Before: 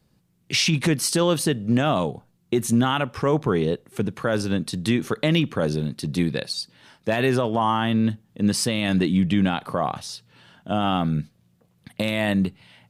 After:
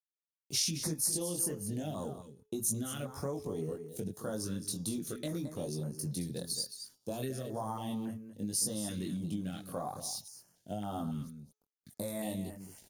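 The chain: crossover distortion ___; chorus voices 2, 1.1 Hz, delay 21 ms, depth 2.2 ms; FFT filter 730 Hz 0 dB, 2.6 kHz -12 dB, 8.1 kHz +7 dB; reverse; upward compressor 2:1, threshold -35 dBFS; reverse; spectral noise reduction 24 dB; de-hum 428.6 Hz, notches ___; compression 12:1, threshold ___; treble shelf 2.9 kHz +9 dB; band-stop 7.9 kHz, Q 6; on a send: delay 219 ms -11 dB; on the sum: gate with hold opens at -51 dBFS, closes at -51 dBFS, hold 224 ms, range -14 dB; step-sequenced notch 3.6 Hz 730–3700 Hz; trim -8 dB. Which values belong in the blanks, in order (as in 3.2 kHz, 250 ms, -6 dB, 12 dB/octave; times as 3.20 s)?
-51.5 dBFS, 17, -25 dBFS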